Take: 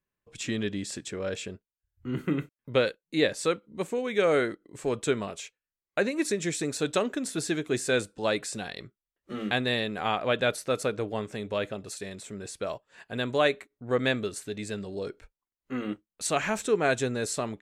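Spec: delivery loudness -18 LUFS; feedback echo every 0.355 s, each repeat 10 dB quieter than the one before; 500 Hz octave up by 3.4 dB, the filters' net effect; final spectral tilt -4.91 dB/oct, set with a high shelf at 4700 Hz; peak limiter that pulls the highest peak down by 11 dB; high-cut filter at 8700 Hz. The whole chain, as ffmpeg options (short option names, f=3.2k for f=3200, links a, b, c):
-af "lowpass=8.7k,equalizer=f=500:t=o:g=4,highshelf=f=4.7k:g=-5,alimiter=limit=-20dB:level=0:latency=1,aecho=1:1:355|710|1065|1420:0.316|0.101|0.0324|0.0104,volume=13.5dB"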